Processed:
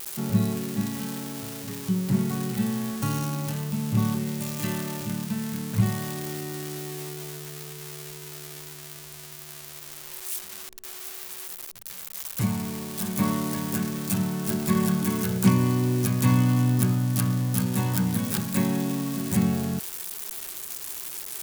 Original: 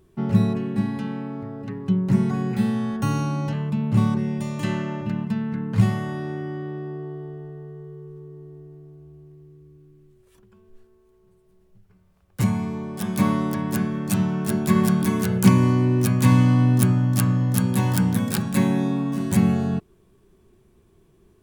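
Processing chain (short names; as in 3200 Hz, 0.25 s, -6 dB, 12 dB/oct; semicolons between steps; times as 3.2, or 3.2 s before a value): switching spikes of -17.5 dBFS; gain -4.5 dB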